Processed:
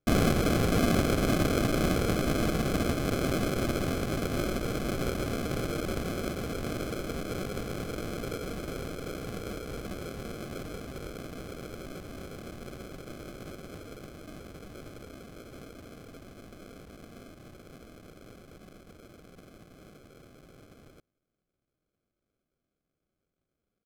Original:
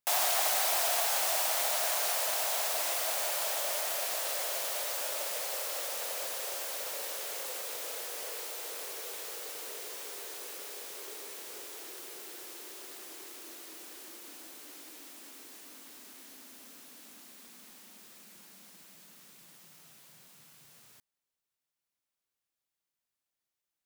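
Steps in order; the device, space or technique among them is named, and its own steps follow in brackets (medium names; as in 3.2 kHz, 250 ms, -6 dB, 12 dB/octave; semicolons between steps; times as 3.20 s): crushed at another speed (playback speed 1.25×; sample-and-hold 38×; playback speed 0.8×); trim +5 dB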